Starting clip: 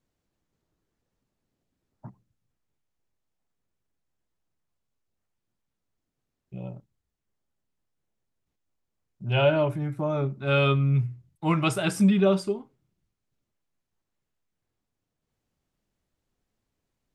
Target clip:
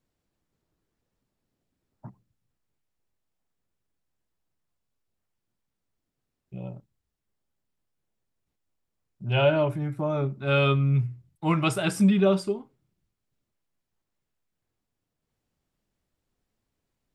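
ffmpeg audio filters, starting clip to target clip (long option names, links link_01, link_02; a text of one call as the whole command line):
ffmpeg -i in.wav -af "bandreject=frequency=6300:width=24" out.wav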